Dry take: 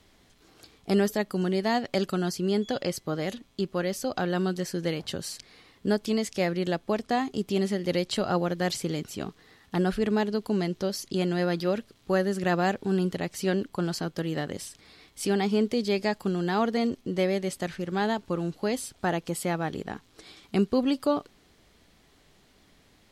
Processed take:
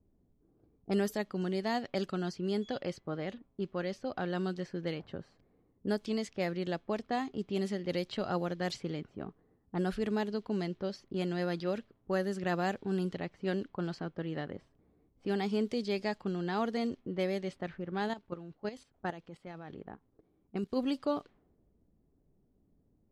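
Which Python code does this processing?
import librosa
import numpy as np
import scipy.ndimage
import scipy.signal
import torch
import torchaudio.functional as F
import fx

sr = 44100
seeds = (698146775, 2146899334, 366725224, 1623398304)

y = fx.env_lowpass(x, sr, base_hz=340.0, full_db=-21.0)
y = fx.level_steps(y, sr, step_db=13, at=(18.08, 20.75), fade=0.02)
y = y * librosa.db_to_amplitude(-7.0)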